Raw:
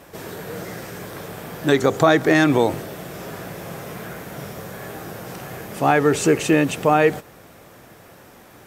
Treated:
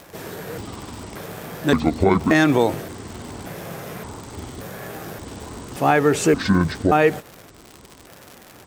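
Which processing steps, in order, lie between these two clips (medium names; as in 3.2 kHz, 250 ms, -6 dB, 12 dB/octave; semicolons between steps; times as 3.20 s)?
pitch shift switched off and on -9 st, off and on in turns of 576 ms; crackle 140 per s -29 dBFS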